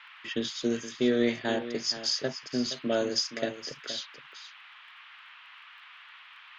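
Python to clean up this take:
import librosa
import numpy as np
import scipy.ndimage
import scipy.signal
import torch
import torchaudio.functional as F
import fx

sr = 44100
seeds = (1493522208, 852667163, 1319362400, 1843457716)

y = fx.fix_declick_ar(x, sr, threshold=6.5)
y = fx.noise_reduce(y, sr, print_start_s=6.01, print_end_s=6.51, reduce_db=24.0)
y = fx.fix_echo_inverse(y, sr, delay_ms=470, level_db=-12.5)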